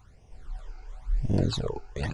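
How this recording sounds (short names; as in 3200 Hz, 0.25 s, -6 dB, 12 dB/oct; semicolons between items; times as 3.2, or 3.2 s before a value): phasing stages 12, 0.96 Hz, lowest notch 180–1400 Hz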